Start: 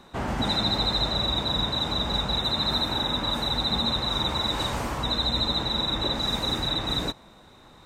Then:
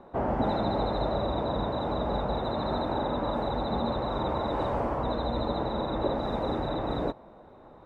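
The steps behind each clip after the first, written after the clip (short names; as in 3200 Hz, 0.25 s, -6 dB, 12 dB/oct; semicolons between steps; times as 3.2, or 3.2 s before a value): EQ curve 170 Hz 0 dB, 600 Hz +9 dB, 6700 Hz -24 dB; gain -2.5 dB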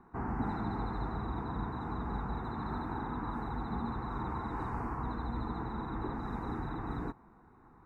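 fixed phaser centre 1400 Hz, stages 4; gain -3.5 dB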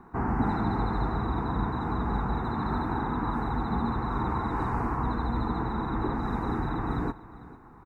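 echo 0.449 s -18 dB; gain +8 dB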